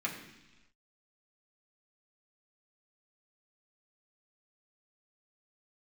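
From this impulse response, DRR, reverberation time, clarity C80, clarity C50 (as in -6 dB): -3.5 dB, 1.1 s, 8.5 dB, 7.0 dB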